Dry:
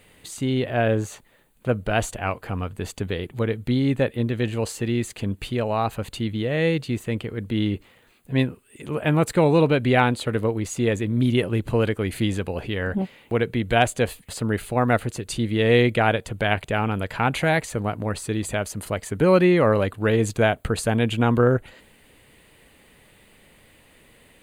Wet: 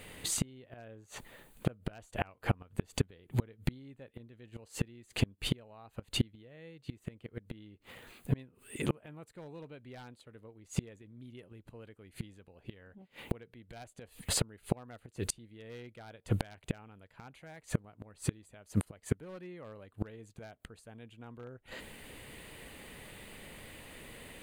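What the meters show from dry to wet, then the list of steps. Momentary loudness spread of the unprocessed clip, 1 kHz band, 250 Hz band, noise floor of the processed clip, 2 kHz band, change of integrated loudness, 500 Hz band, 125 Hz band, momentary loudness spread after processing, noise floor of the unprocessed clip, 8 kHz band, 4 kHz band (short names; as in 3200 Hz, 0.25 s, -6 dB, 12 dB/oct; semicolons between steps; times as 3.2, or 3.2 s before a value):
11 LU, -22.5 dB, -17.5 dB, -69 dBFS, -20.0 dB, -16.5 dB, -22.5 dB, -14.0 dB, 18 LU, -56 dBFS, -6.0 dB, -11.0 dB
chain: one-sided fold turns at -11.5 dBFS; flipped gate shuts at -20 dBFS, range -34 dB; gain +4 dB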